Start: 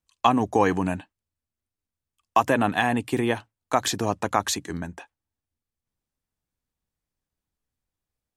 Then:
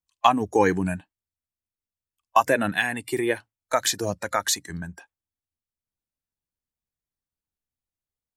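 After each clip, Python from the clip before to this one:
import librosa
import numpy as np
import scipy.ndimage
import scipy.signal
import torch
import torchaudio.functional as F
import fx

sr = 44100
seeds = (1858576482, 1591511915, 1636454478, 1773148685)

y = fx.noise_reduce_blind(x, sr, reduce_db=11)
y = fx.high_shelf(y, sr, hz=9100.0, db=5.0)
y = y * 10.0 ** (2.0 / 20.0)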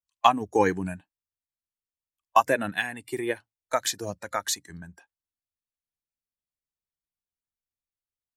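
y = fx.upward_expand(x, sr, threshold_db=-30.0, expansion=1.5)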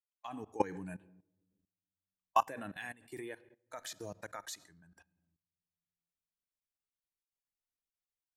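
y = fx.fade_in_head(x, sr, length_s=0.65)
y = fx.room_shoebox(y, sr, seeds[0], volume_m3=3800.0, walls='furnished', distance_m=0.48)
y = fx.level_steps(y, sr, step_db=19)
y = y * 10.0 ** (-5.0 / 20.0)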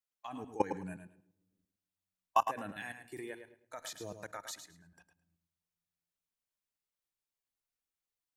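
y = fx.echo_feedback(x, sr, ms=107, feedback_pct=18, wet_db=-9.0)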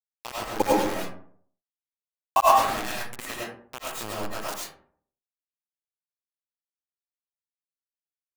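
y = fx.quant_dither(x, sr, seeds[1], bits=6, dither='none')
y = fx.rev_freeverb(y, sr, rt60_s=0.57, hf_ratio=0.45, predelay_ms=60, drr_db=-6.5)
y = y * 10.0 ** (6.0 / 20.0)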